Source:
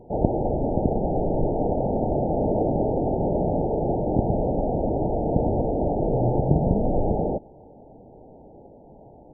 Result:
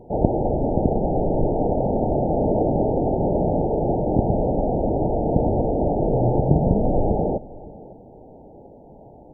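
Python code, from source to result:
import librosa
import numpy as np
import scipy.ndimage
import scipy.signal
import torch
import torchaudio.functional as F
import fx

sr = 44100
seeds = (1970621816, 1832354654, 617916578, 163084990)

y = x + 10.0 ** (-20.5 / 20.0) * np.pad(x, (int(559 * sr / 1000.0), 0))[:len(x)]
y = F.gain(torch.from_numpy(y), 2.5).numpy()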